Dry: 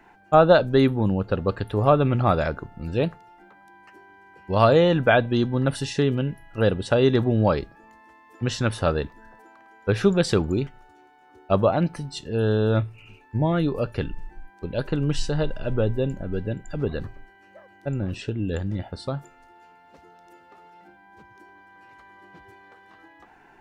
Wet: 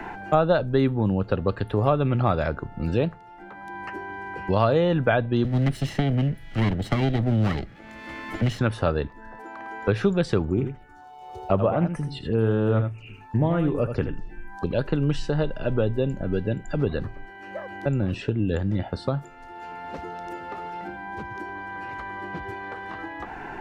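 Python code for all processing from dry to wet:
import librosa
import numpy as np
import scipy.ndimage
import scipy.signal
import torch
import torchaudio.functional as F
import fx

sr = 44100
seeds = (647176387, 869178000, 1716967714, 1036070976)

y = fx.chain(x, sr, fx.lower_of_two(delay_ms=0.97),
    fx.peak_eq(hz=1000.0, db=-14.0, octaves=0.72),
    fx.band_squash(depth_pct=40), at=(5.44, 8.59))
y = fx.chain(y, sr, fx.env_phaser(low_hz=240.0, high_hz=4200.0, full_db=-24.0),
    fx.echo_single(ms=80, db=-9.0),
    fx.doppler_dist(depth_ms=0.13), at=(10.5, 14.73))
y = fx.high_shelf(y, sr, hz=5400.0, db=-10.0)
y = fx.band_squash(y, sr, depth_pct=70)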